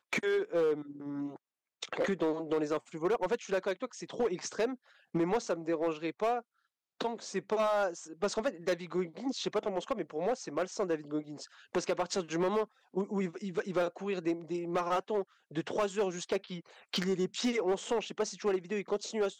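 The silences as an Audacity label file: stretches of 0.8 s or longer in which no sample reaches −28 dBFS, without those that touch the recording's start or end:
0.740000	1.830000	silence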